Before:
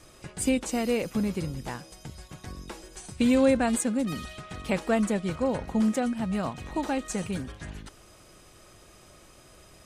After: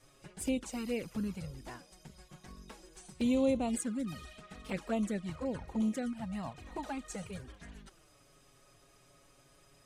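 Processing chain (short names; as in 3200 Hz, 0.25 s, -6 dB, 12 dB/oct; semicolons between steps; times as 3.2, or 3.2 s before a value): envelope flanger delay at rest 8.1 ms, full sweep at -20.5 dBFS; gain -7 dB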